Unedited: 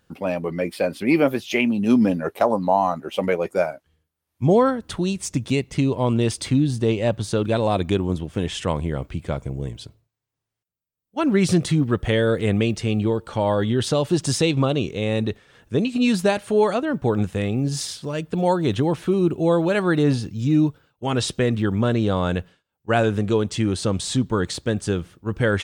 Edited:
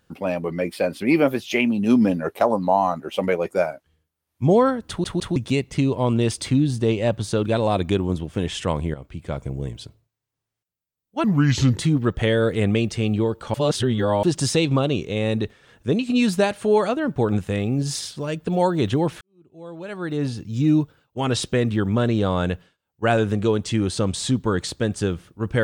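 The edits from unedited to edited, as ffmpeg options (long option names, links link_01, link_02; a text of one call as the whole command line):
ffmpeg -i in.wav -filter_complex "[0:a]asplit=10[link_01][link_02][link_03][link_04][link_05][link_06][link_07][link_08][link_09][link_10];[link_01]atrim=end=5.042[link_11];[link_02]atrim=start=4.878:end=5.042[link_12];[link_03]atrim=start=4.878:end=5.042[link_13];[link_04]atrim=start=5.358:end=8.94,asetpts=PTS-STARTPTS,afade=type=out:start_time=3.578:duration=0.004:curve=hsin:silence=0.223872[link_14];[link_05]atrim=start=8.94:end=11.244,asetpts=PTS-STARTPTS,afade=type=in:duration=0.54:silence=0.223872[link_15];[link_06]atrim=start=11.24:end=11.64,asetpts=PTS-STARTPTS,asetrate=32634,aresample=44100[link_16];[link_07]atrim=start=11.636:end=13.402[link_17];[link_08]atrim=start=13.398:end=14.092,asetpts=PTS-STARTPTS,areverse[link_18];[link_09]atrim=start=14.088:end=19.07,asetpts=PTS-STARTPTS,afade=type=out:start_time=4.978:duration=0.004:curve=hsin[link_19];[link_10]atrim=start=19.07,asetpts=PTS-STARTPTS,afade=type=in:duration=1.4:curve=qua[link_20];[link_11][link_12]acrossfade=duration=0.004:curve1=hsin:curve2=hsin[link_21];[link_21][link_13]acrossfade=duration=0.004:curve1=hsin:curve2=hsin[link_22];[link_14][link_15]concat=n=2:v=0:a=1[link_23];[link_22][link_23]acrossfade=duration=0.004:curve1=hsin:curve2=hsin[link_24];[link_24][link_16]acrossfade=duration=0.004:curve1=hsin:curve2=hsin[link_25];[link_25][link_17]acrossfade=duration=0.004:curve1=hsin:curve2=hsin[link_26];[link_26][link_18]acrossfade=duration=0.004:curve1=hsin:curve2=hsin[link_27];[link_19][link_20]concat=n=2:v=0:a=1[link_28];[link_27][link_28]acrossfade=duration=0.004:curve1=hsin:curve2=hsin" out.wav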